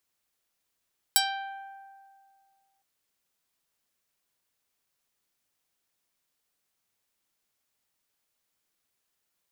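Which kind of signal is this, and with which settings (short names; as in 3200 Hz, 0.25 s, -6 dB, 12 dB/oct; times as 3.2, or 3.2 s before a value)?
plucked string G5, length 1.66 s, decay 2.13 s, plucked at 0.36, medium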